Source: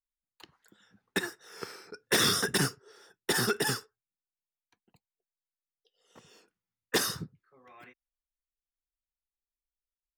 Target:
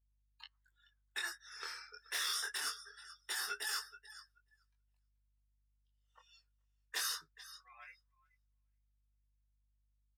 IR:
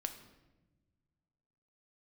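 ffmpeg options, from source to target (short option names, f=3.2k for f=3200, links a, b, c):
-filter_complex "[0:a]areverse,acompressor=threshold=-36dB:ratio=6,areverse,highpass=1.1k,aecho=1:1:430|860|1290:0.2|0.0519|0.0135,flanger=delay=20:depth=6:speed=0.23,aeval=exprs='val(0)+0.0002*(sin(2*PI*50*n/s)+sin(2*PI*2*50*n/s)/2+sin(2*PI*3*50*n/s)/3+sin(2*PI*4*50*n/s)/4+sin(2*PI*5*50*n/s)/5)':c=same,afftdn=nr=23:nf=-59,asplit=2[a][b];[b]adelay=12,volume=-12dB[c];[a][c]amix=inputs=2:normalize=0,volume=4.5dB"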